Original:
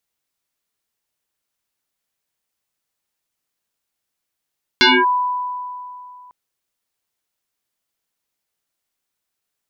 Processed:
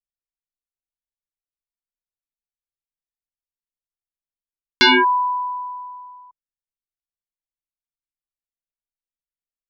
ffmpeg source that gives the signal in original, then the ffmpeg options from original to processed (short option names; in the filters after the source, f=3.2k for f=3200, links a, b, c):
-f lavfi -i "aevalsrc='0.422*pow(10,-3*t/2.71)*sin(2*PI*993*t+6.3*clip(1-t/0.24,0,1)*sin(2*PI*0.63*993*t))':d=1.5:s=44100"
-af "anlmdn=1.58"